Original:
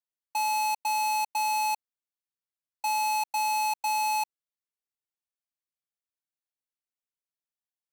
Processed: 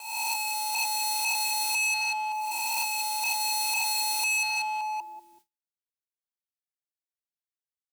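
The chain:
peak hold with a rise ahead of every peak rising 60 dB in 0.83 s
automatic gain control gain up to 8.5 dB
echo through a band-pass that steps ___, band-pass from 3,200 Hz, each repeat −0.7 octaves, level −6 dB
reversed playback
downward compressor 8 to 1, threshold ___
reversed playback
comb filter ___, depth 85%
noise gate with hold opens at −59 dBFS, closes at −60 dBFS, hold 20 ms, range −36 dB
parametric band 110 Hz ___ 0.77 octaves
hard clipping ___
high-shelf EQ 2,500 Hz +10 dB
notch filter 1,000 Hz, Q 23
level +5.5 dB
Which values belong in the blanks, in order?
191 ms, −31 dBFS, 3.1 ms, +4.5 dB, −36 dBFS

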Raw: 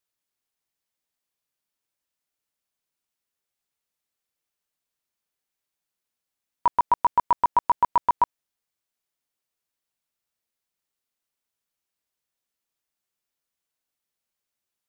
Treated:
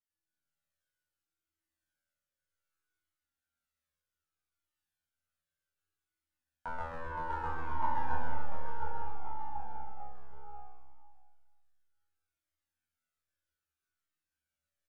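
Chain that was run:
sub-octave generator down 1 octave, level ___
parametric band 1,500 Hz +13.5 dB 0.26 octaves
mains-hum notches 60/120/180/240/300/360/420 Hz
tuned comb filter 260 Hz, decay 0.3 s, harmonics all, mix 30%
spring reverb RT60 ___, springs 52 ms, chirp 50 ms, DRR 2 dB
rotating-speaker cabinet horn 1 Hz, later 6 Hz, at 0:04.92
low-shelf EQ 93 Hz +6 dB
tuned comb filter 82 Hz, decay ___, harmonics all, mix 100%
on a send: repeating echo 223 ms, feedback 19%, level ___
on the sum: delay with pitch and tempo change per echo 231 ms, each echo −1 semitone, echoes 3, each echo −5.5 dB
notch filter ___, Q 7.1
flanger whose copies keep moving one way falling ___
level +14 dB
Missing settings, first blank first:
+2 dB, 1.5 s, 1.1 s, −14.5 dB, 1,000 Hz, 0.64 Hz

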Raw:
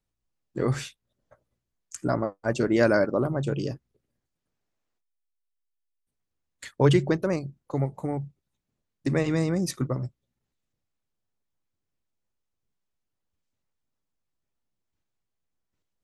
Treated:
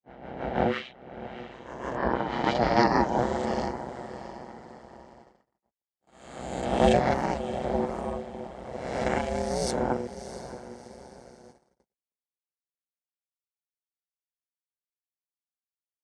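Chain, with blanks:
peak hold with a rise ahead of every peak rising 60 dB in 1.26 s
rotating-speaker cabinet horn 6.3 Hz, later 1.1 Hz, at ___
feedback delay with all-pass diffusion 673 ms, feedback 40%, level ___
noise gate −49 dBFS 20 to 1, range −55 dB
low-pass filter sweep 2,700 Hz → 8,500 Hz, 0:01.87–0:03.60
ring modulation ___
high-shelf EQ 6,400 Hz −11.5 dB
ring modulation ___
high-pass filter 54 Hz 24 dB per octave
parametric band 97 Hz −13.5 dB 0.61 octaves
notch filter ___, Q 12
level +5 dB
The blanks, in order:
0:02.75, −12 dB, 300 Hz, 64 Hz, 2,500 Hz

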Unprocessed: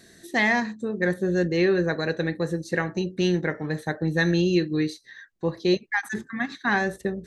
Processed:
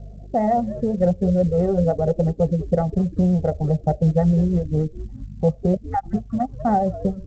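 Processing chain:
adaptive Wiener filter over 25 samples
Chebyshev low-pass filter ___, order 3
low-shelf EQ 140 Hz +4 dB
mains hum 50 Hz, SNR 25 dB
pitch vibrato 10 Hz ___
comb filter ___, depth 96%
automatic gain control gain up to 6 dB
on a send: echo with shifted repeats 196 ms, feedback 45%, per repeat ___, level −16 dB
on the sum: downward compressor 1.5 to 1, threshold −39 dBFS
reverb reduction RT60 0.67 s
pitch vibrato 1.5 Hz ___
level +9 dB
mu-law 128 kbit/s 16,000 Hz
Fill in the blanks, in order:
770 Hz, 29 cents, 1.5 ms, −98 Hz, 7.5 cents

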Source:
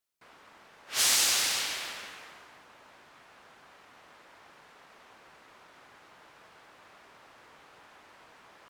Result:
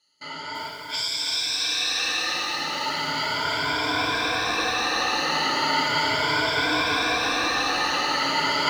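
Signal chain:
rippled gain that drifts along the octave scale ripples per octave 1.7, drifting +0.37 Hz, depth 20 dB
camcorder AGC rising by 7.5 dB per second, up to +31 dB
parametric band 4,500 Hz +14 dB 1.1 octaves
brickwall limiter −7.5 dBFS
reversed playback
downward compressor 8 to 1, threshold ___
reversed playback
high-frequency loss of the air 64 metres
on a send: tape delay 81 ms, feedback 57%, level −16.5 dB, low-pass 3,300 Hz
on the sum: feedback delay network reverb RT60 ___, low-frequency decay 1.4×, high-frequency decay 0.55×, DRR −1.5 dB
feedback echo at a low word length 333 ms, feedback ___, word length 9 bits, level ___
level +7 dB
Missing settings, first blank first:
−32 dBFS, 0.36 s, 55%, −5 dB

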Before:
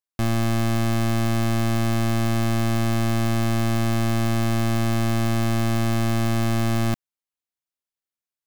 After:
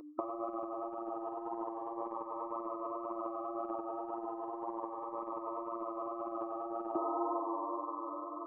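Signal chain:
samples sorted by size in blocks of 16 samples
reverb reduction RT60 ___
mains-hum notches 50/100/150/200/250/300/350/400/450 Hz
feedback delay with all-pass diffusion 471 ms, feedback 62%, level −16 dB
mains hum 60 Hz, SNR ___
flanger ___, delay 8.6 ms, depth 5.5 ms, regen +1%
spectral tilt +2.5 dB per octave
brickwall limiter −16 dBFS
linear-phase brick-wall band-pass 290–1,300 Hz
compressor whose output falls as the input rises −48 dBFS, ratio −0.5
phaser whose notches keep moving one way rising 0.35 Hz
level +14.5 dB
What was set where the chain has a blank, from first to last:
0.88 s, 24 dB, 1.9 Hz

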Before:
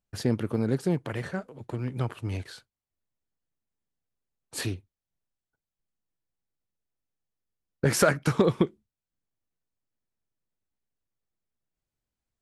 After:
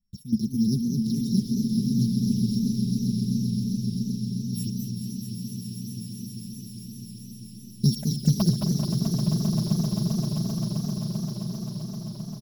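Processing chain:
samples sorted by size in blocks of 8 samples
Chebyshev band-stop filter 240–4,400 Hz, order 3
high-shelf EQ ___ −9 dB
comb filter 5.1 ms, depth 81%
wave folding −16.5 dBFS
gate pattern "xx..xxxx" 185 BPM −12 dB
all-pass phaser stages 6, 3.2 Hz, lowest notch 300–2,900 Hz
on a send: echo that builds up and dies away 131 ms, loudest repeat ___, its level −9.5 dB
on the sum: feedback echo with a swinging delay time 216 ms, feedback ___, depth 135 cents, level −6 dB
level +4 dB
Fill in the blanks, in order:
6,800 Hz, 8, 76%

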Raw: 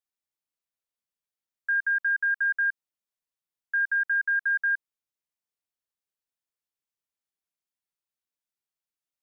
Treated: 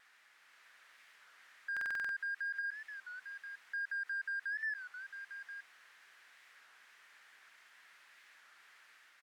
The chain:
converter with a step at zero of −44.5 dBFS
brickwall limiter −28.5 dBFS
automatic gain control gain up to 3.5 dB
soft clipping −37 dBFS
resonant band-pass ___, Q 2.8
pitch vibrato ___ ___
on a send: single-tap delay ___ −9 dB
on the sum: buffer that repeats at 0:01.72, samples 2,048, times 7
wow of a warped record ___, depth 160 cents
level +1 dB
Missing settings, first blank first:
1,700 Hz, 0.89 Hz, 10 cents, 851 ms, 33 1/3 rpm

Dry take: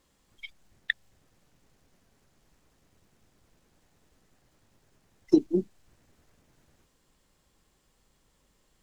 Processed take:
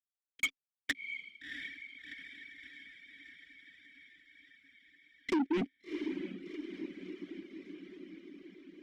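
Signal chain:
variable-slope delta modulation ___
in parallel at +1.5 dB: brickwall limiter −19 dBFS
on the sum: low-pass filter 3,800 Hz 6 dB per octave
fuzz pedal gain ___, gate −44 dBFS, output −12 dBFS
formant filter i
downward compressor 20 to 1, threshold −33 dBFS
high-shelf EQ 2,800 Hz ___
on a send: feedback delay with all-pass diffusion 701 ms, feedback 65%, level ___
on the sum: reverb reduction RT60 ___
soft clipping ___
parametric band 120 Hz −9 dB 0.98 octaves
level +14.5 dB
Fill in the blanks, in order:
64 kbit/s, 39 dB, −6.5 dB, −10 dB, 0.97 s, −40 dBFS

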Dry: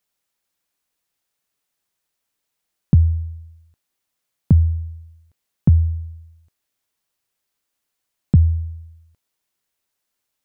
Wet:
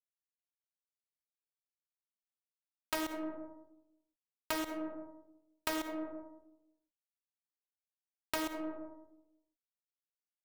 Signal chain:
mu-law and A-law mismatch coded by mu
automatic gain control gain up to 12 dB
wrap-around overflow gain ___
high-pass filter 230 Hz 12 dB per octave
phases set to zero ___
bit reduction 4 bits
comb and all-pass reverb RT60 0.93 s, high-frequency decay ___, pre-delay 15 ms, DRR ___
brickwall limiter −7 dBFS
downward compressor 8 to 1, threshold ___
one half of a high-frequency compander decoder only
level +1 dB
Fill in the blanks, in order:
9 dB, 314 Hz, 0.35×, 13.5 dB, −33 dBFS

